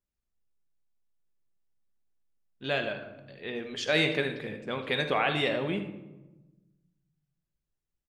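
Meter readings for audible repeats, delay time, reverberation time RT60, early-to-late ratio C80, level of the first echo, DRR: 1, 79 ms, 1.1 s, 11.0 dB, −14.5 dB, 5.5 dB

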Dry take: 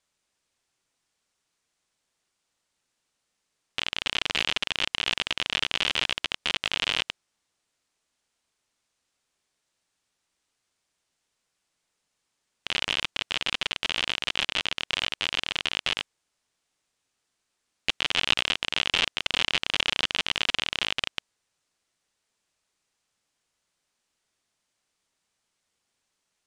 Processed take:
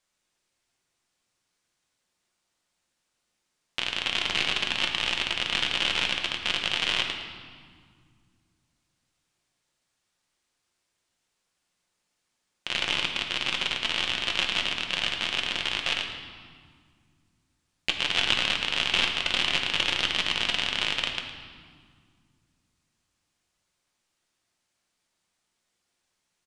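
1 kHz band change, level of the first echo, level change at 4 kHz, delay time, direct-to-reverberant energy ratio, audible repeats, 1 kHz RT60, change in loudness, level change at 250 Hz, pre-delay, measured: +1.0 dB, −14.0 dB, +1.0 dB, 111 ms, 2.0 dB, 1, 1.9 s, +1.0 dB, +2.0 dB, 6 ms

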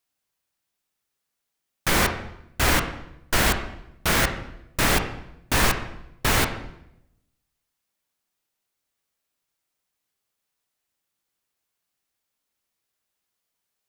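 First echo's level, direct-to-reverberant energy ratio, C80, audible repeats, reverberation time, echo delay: no echo audible, 6.0 dB, 11.0 dB, no echo audible, 0.80 s, no echo audible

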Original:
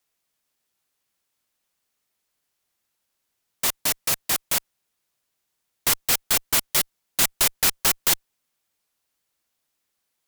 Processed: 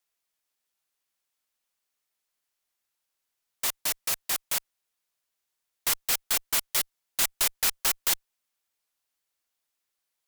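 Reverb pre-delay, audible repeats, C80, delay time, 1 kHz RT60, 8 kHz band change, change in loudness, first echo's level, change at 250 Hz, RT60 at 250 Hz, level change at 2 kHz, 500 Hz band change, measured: no reverb audible, no echo audible, no reverb audible, no echo audible, no reverb audible, −5.0 dB, −5.0 dB, no echo audible, −11.0 dB, no reverb audible, −5.5 dB, −8.0 dB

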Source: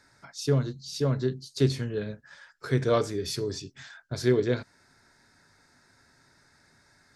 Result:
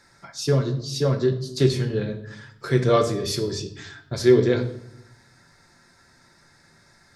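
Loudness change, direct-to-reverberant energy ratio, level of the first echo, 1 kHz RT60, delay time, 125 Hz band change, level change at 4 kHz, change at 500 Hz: +6.0 dB, 5.0 dB, no echo audible, 0.75 s, no echo audible, +5.0 dB, +5.5 dB, +6.5 dB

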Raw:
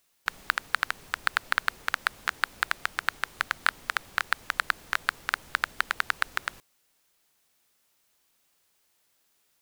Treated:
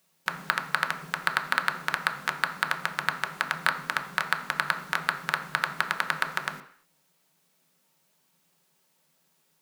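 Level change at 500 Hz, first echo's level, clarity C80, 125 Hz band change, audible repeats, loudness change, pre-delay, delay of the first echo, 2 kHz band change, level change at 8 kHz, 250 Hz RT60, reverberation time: +5.0 dB, no echo audible, 13.5 dB, +10.5 dB, no echo audible, +1.0 dB, 3 ms, no echo audible, +1.0 dB, 0.0 dB, 0.50 s, 0.55 s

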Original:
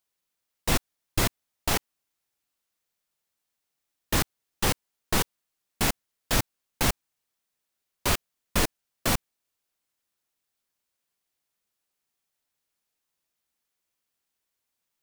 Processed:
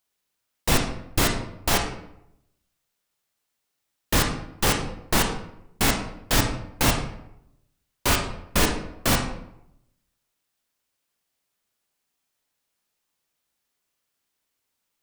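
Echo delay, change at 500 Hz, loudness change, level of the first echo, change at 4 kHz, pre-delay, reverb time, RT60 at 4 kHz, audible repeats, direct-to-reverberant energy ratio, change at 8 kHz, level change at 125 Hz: no echo audible, +5.0 dB, +4.0 dB, no echo audible, +4.5 dB, 21 ms, 0.75 s, 0.50 s, no echo audible, 2.5 dB, +4.0 dB, +4.5 dB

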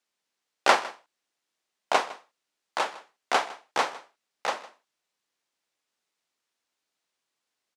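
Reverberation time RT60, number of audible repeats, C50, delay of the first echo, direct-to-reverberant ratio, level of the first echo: no reverb audible, 1, no reverb audible, 157 ms, no reverb audible, −19.0 dB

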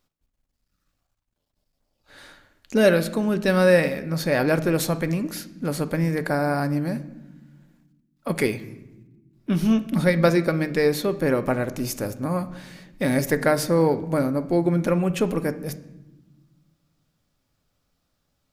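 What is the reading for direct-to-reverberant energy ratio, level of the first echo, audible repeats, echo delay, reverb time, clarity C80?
10.0 dB, no echo audible, no echo audible, no echo audible, 1.1 s, 17.5 dB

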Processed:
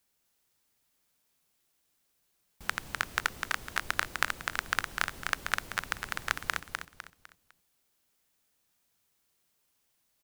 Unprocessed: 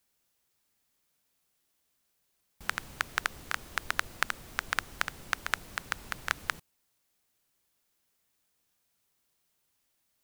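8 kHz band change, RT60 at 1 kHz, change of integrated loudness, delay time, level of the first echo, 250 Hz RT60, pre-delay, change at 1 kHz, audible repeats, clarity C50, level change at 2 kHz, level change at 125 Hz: +1.5 dB, no reverb audible, +1.0 dB, 252 ms, −5.0 dB, no reverb audible, no reverb audible, +1.5 dB, 4, no reverb audible, +1.5 dB, +1.5 dB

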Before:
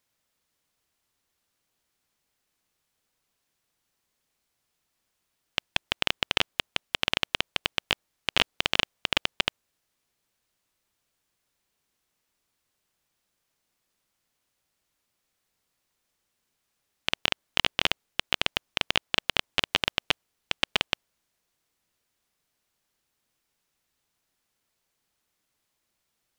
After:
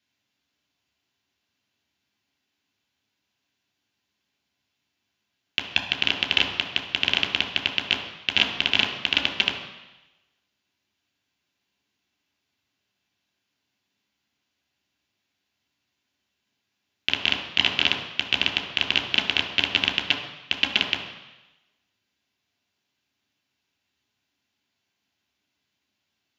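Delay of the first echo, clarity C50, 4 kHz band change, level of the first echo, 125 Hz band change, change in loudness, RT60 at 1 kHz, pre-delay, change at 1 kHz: no echo audible, 7.5 dB, +5.0 dB, no echo audible, +2.0 dB, +4.5 dB, 1.1 s, 3 ms, −0.5 dB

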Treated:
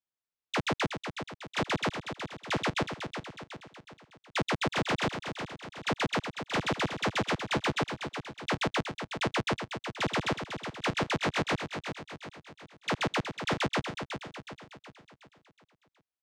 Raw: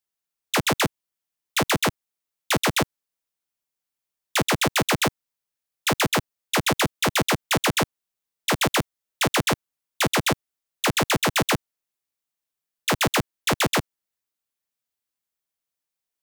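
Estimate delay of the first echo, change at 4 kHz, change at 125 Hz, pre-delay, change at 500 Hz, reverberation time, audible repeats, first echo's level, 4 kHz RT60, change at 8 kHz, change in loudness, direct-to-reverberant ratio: 369 ms, −9.0 dB, −6.5 dB, no reverb audible, −6.5 dB, no reverb audible, 5, −8.0 dB, no reverb audible, −16.5 dB, −9.0 dB, no reverb audible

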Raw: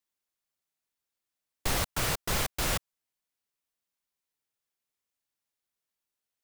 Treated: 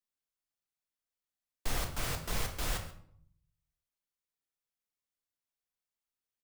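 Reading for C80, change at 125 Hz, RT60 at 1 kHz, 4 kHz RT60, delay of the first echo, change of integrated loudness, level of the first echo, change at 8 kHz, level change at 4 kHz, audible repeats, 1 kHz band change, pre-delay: 11.5 dB, −4.0 dB, 0.60 s, 0.45 s, 133 ms, −6.5 dB, −17.0 dB, −7.5 dB, −7.0 dB, 1, −7.0 dB, 3 ms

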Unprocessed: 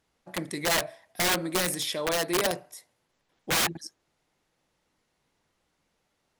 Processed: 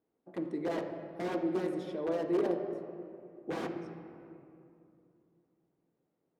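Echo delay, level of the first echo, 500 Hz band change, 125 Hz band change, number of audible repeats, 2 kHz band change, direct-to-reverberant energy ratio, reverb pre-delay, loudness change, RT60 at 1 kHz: no echo audible, no echo audible, −2.0 dB, −7.0 dB, no echo audible, −17.5 dB, 4.5 dB, 3 ms, −8.5 dB, 2.5 s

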